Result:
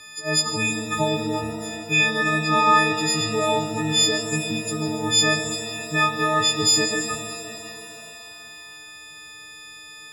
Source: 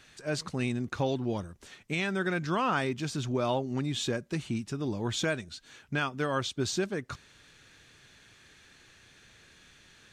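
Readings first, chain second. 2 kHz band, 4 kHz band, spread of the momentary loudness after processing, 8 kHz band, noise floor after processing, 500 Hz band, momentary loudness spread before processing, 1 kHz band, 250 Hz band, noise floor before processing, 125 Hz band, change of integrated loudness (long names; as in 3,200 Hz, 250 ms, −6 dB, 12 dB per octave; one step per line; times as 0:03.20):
+12.5 dB, +16.0 dB, 22 LU, +18.5 dB, −42 dBFS, +6.5 dB, 8 LU, +12.5 dB, +6.0 dB, −59 dBFS, +4.0 dB, +11.0 dB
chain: every partial snapped to a pitch grid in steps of 6 semitones
reverb with rising layers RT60 3 s, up +7 semitones, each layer −8 dB, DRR 5.5 dB
level +4 dB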